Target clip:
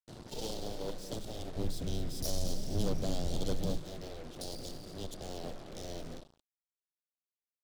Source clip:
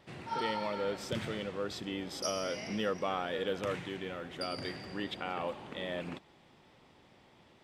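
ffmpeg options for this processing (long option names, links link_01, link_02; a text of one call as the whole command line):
ffmpeg -i in.wav -filter_complex "[0:a]aeval=exprs='0.0891*(cos(1*acos(clip(val(0)/0.0891,-1,1)))-cos(1*PI/2))+0.00158*(cos(3*acos(clip(val(0)/0.0891,-1,1)))-cos(3*PI/2))+0.00141*(cos(6*acos(clip(val(0)/0.0891,-1,1)))-cos(6*PI/2))+0.0224*(cos(7*acos(clip(val(0)/0.0891,-1,1)))-cos(7*PI/2))+0.0112*(cos(8*acos(clip(val(0)/0.0891,-1,1)))-cos(8*PI/2))':channel_layout=same,asuperstop=centerf=1600:order=8:qfactor=0.57,aecho=1:1:225:0.2,afreqshift=-14,asoftclip=type=tanh:threshold=-31.5dB,asettb=1/sr,asplit=3[link_01][link_02][link_03];[link_01]atrim=end=1.564[link_04];[link_02]atrim=start=1.56:end=3.78,asetpts=PTS-STARTPTS,afade=type=in:duration=0.004:curve=qsin,afade=type=out:start_time=2.216:duration=0.004:curve=qsin,bass=frequency=250:gain=11,treble=frequency=4000:gain=4[link_05];[link_03]atrim=start=3.776[link_06];[link_04][link_05]acrossfade=duration=0.004:curve1=hsin:curve2=qsin[link_07];[link_07][link_06]acrossfade=duration=0.004:curve1=qsin:curve2=hsin,acrusher=bits=7:mix=0:aa=0.5,adynamicequalizer=threshold=0.00158:dfrequency=2800:dqfactor=0.7:tfrequency=2800:tqfactor=0.7:attack=5:release=100:ratio=0.375:range=1.5:mode=cutabove:tftype=highshelf,volume=1dB" out.wav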